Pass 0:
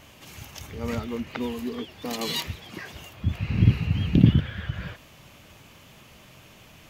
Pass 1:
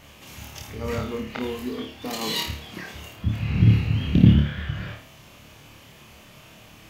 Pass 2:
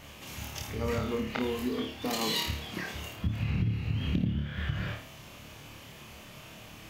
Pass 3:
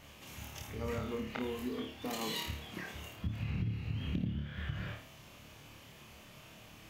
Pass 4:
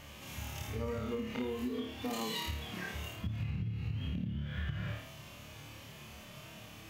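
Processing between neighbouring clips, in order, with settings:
flutter echo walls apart 4.7 m, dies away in 0.43 s
compressor 10:1, threshold -26 dBFS, peak gain reduction 18 dB
dynamic EQ 4700 Hz, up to -5 dB, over -52 dBFS, Q 2.4; gain -6.5 dB
harmonic-percussive split percussive -18 dB; compressor 10:1, threshold -41 dBFS, peak gain reduction 10.5 dB; gain +8 dB

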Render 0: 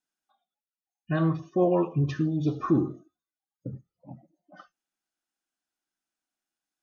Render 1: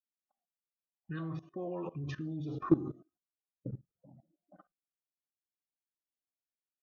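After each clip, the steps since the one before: spectral repair 0.99–1.2, 520–1100 Hz both; low-pass opened by the level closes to 560 Hz, open at -20.5 dBFS; level quantiser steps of 19 dB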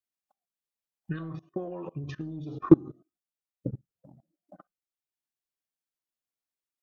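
transient shaper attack +10 dB, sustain -4 dB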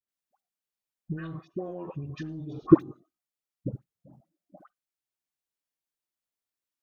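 dispersion highs, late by 87 ms, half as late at 960 Hz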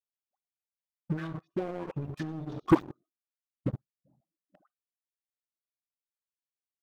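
sample leveller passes 3; gain -9 dB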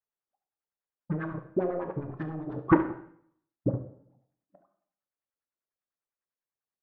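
LFO low-pass sine 10 Hz 450–1800 Hz; echo 71 ms -14 dB; reverb RT60 0.65 s, pre-delay 6 ms, DRR 7 dB

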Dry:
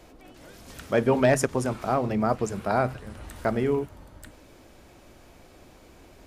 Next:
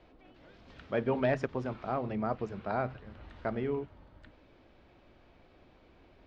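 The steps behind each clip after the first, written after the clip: LPF 4000 Hz 24 dB/oct; gain -8.5 dB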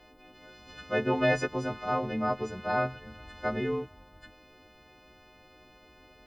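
frequency quantiser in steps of 3 st; gain +3 dB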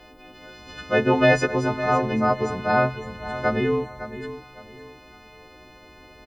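feedback echo 0.559 s, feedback 31%, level -12.5 dB; gain +8 dB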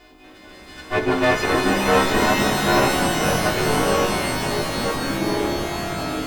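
minimum comb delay 2.8 ms; echoes that change speed 0.236 s, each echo -5 st, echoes 3; shimmer reverb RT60 3.5 s, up +12 st, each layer -2 dB, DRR 5 dB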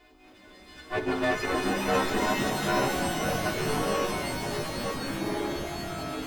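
bin magnitudes rounded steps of 15 dB; gain -8 dB

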